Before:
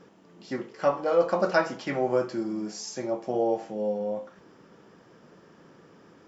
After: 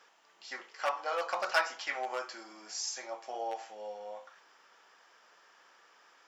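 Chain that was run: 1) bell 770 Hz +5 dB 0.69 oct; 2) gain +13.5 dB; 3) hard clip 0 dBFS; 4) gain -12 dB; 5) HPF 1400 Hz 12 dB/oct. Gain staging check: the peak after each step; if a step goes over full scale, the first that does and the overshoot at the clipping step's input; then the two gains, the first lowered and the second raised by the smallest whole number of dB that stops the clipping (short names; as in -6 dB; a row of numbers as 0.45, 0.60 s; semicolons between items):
-7.5, +6.0, 0.0, -12.0, -15.0 dBFS; step 2, 6.0 dB; step 2 +7.5 dB, step 4 -6 dB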